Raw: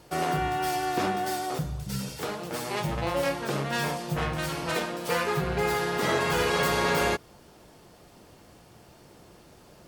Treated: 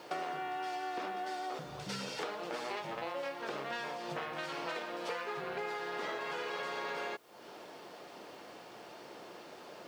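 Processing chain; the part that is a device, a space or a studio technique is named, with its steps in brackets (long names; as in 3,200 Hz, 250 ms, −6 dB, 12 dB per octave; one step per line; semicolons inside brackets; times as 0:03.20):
baby monitor (band-pass filter 370–4,400 Hz; downward compressor 12 to 1, threshold −42 dBFS, peak gain reduction 19.5 dB; white noise bed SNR 30 dB)
level +6 dB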